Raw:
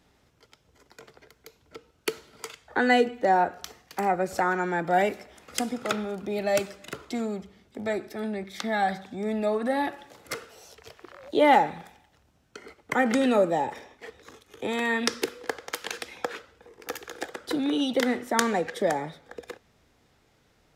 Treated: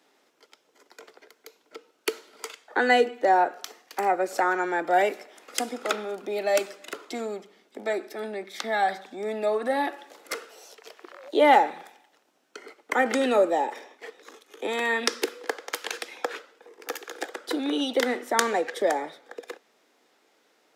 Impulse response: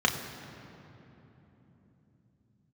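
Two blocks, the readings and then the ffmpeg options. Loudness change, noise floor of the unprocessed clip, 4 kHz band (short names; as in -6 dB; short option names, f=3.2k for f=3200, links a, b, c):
+1.0 dB, -65 dBFS, +1.5 dB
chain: -af "highpass=f=290:w=0.5412,highpass=f=290:w=1.3066,volume=1.5dB"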